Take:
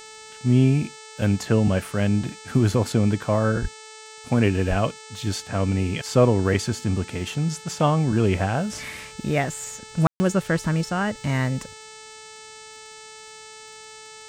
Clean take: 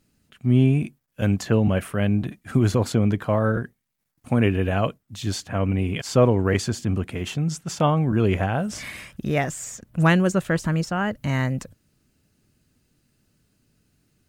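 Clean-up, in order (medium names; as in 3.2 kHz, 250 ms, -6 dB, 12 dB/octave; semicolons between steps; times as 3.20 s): de-click; de-hum 436.7 Hz, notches 20; de-plosive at 3.61/4.69 s; room tone fill 10.07–10.20 s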